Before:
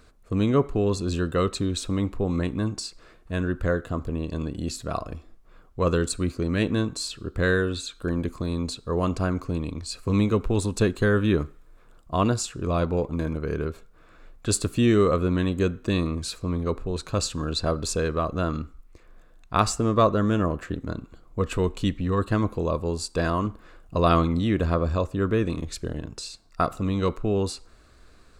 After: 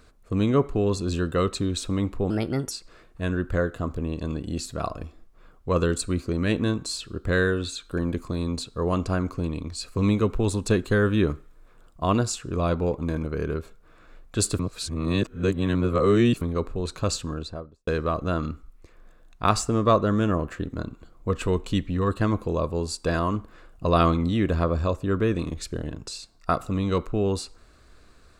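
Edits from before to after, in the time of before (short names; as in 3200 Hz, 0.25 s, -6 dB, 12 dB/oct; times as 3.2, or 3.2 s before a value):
2.3–2.82 speed 126%
14.7–16.52 reverse
17.18–17.98 studio fade out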